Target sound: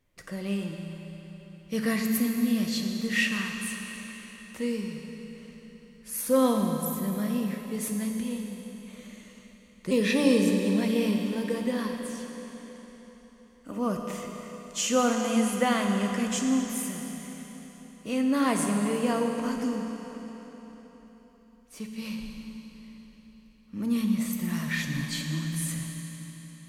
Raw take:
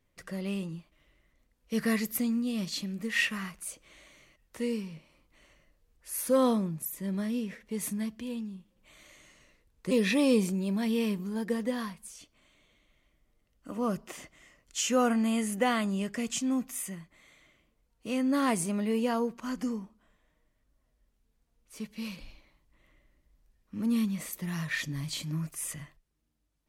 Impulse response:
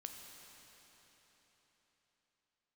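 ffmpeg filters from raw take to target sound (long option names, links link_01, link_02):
-filter_complex "[1:a]atrim=start_sample=2205[link_01];[0:a][link_01]afir=irnorm=-1:irlink=0,volume=7dB"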